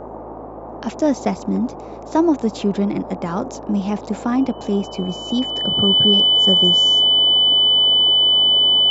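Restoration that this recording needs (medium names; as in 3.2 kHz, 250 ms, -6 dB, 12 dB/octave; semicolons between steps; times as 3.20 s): de-hum 53.7 Hz, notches 23; band-stop 3 kHz, Q 30; noise print and reduce 30 dB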